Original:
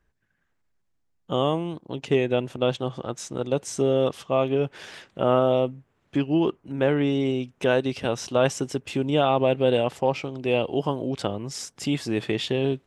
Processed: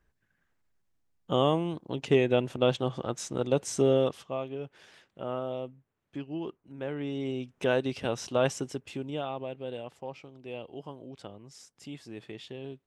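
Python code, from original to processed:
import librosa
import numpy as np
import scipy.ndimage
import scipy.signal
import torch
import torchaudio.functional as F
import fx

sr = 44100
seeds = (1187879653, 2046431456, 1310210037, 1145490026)

y = fx.gain(x, sr, db=fx.line((3.93, -1.5), (4.48, -14.0), (6.85, -14.0), (7.58, -5.0), (8.51, -5.0), (9.52, -17.0)))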